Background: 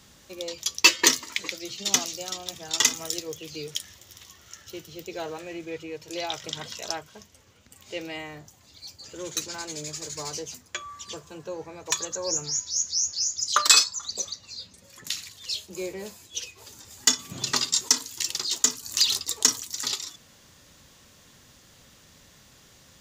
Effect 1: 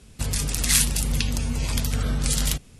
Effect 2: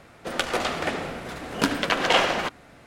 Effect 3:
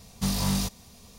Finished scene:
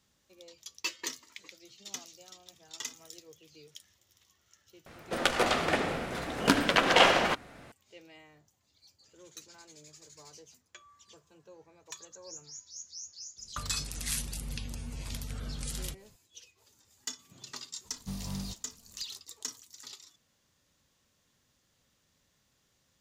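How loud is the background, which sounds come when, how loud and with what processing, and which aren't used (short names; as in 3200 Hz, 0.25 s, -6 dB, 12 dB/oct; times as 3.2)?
background -18.5 dB
4.86 add 2 -1 dB
13.37 add 1 -14.5 dB
17.85 add 3 -16.5 dB + low shelf 390 Hz +6.5 dB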